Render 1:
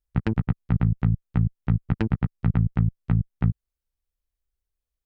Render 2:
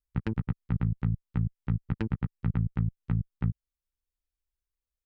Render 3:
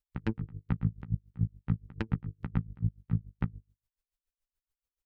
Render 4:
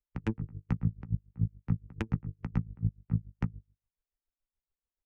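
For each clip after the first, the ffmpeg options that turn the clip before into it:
-af "equalizer=f=690:w=7.9:g=-11.5,volume=-6.5dB"
-af "bandreject=f=50:t=h:w=6,bandreject=f=100:t=h:w=6,bandreject=f=150:t=h:w=6,bandreject=f=200:t=h:w=6,bandreject=f=250:t=h:w=6,bandreject=f=300:t=h:w=6,bandreject=f=350:t=h:w=6,bandreject=f=400:t=h:w=6,bandreject=f=450:t=h:w=6,aeval=exprs='val(0)*pow(10,-26*(0.5-0.5*cos(2*PI*7*n/s))/20)':c=same,volume=3dB"
-filter_complex "[0:a]acrossover=split=210|980[a][b][c];[c]aexciter=amount=1.2:drive=5.2:freq=2.1k[d];[a][b][d]amix=inputs=3:normalize=0,adynamicsmooth=sensitivity=2.5:basefreq=1.4k"

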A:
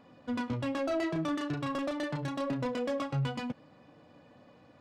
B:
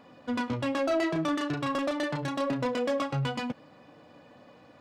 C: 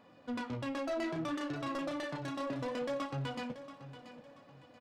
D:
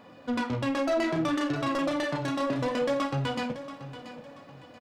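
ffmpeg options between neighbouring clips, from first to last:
-af "lowshelf=f=220:g=-6.5,volume=5.5dB"
-af "flanger=delay=9.6:depth=7.9:regen=-56:speed=0.64:shape=sinusoidal,asoftclip=type=tanh:threshold=-27.5dB,aecho=1:1:682|1364|2046:0.224|0.0761|0.0259,volume=-2.5dB"
-filter_complex "[0:a]asplit=2[a][b];[b]adelay=47,volume=-12.5dB[c];[a][c]amix=inputs=2:normalize=0,volume=9dB"

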